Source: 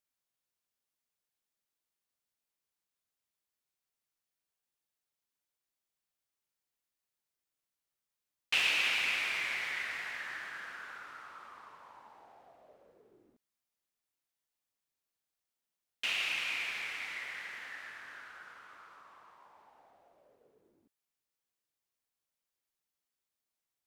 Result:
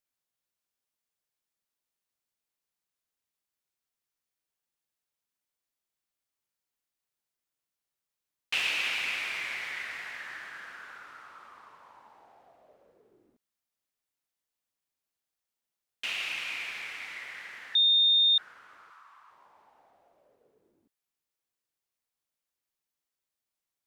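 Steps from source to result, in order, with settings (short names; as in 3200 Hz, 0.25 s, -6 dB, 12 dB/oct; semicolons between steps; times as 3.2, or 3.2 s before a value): 17.75–18.38 bleep 3650 Hz -19 dBFS; 18.9–19.31 resonant low shelf 740 Hz -10.5 dB, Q 1.5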